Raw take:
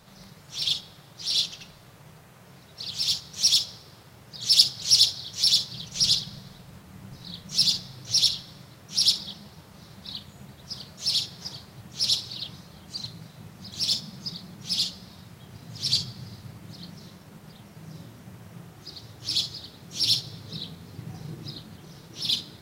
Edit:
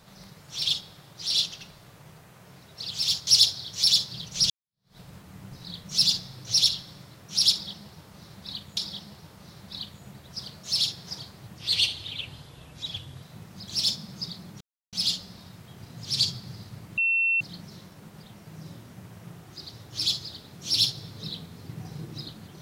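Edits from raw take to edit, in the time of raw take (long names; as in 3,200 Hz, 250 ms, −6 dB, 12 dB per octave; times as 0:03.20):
0:03.27–0:04.87: remove
0:06.10–0:06.58: fade in exponential
0:09.11–0:10.37: repeat, 2 plays
0:11.92–0:13.27: play speed 82%
0:14.65: splice in silence 0.32 s
0:16.70: insert tone 2,700 Hz −20.5 dBFS 0.43 s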